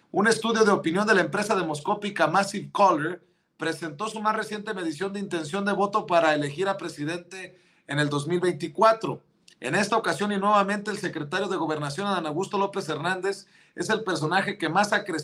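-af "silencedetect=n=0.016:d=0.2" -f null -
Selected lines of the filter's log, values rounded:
silence_start: 3.15
silence_end: 3.60 | silence_duration: 0.45
silence_start: 7.46
silence_end: 7.89 | silence_duration: 0.43
silence_start: 9.16
silence_end: 9.48 | silence_duration: 0.32
silence_start: 13.40
silence_end: 13.77 | silence_duration: 0.36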